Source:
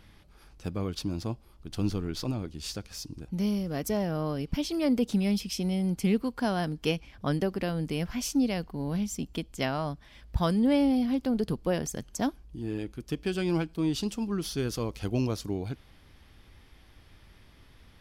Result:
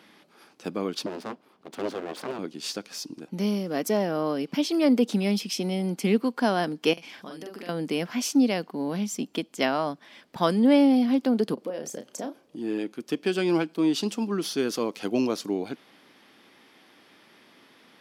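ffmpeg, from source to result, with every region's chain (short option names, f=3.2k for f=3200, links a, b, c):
-filter_complex "[0:a]asettb=1/sr,asplit=3[a][b][c];[a]atrim=end=1.064[d];[b]atrim=start=1.06:end=2.39,asetpts=PTS-STARTPTS,afade=t=in:d=0.004:c=qsin,afade=t=out:st=1.326:d=0.004:c=qsin,bass=f=250:g=-1,treble=f=4k:g=-9,aeval=exprs='abs(val(0))':c=same[e];[c]atrim=start=2.386[f];[d][e]acrossfade=d=0.004:c1=hsin:c2=qsin[g];[g][f]acrossfade=d=0.004:c1=qsin:c2=hsin,asettb=1/sr,asplit=3[h][i][j];[h]atrim=end=6.934[k];[i]atrim=start=6.93:end=7.69,asetpts=PTS-STARTPTS,afade=t=in:d=0.004:c=qsin,afade=t=out:st=0.756:d=0.004:c=qsin,highshelf=f=2.4k:g=9,acompressor=threshold=-41dB:ratio=10:attack=3.2:release=140:knee=1:detection=peak,asplit=2[l][m];[m]adelay=44,volume=-3dB[n];[l][n]amix=inputs=2:normalize=0,atrim=end_sample=33516[o];[j]atrim=start=7.686[p];[k][o]acrossfade=d=0.004:c1=hsin:c2=qsin[q];[q][p]acrossfade=d=0.004:c1=qsin:c2=hsin,asettb=1/sr,asplit=3[r][s][t];[r]atrim=end=11.544[u];[s]atrim=start=11.54:end=12.56,asetpts=PTS-STARTPTS,afade=t=in:d=0.004:c=qsin,afade=t=out:st=1.016:d=0.004:c=qsin,equalizer=f=540:t=o:w=0.57:g=9,acompressor=threshold=-36dB:ratio=5:attack=3.2:release=140:knee=1:detection=peak,asplit=2[v][w];[w]adelay=32,volume=-8dB[x];[v][x]amix=inputs=2:normalize=0,atrim=end_sample=44982[y];[t]atrim=start=12.556[z];[u][y]acrossfade=d=0.004:c1=hsin:c2=qsin[aa];[aa][z]acrossfade=d=0.004:c1=qsin:c2=hsin,highpass=f=220:w=0.5412,highpass=f=220:w=1.3066,highshelf=f=6.6k:g=-5,volume=6dB"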